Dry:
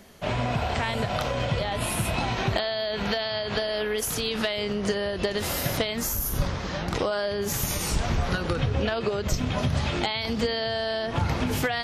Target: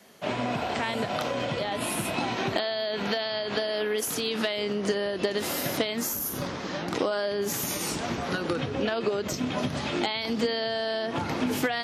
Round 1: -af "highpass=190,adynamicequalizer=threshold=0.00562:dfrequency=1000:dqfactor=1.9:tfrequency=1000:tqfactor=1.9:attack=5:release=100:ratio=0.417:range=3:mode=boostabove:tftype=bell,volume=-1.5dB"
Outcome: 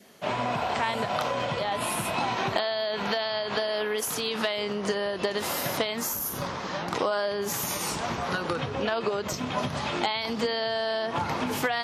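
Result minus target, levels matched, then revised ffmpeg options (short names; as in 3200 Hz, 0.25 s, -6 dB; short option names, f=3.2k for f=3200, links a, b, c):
250 Hz band -3.5 dB
-af "highpass=190,adynamicequalizer=threshold=0.00562:dfrequency=290:dqfactor=1.9:tfrequency=290:tqfactor=1.9:attack=5:release=100:ratio=0.417:range=3:mode=boostabove:tftype=bell,volume=-1.5dB"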